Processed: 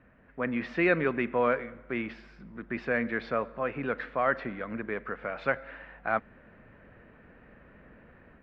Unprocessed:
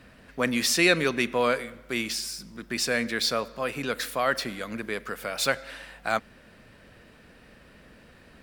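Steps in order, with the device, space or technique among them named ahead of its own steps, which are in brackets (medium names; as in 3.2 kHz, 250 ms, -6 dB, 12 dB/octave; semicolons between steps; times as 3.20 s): action camera in a waterproof case (low-pass 2.1 kHz 24 dB/octave; level rider gain up to 6.5 dB; trim -7.5 dB; AAC 64 kbps 48 kHz)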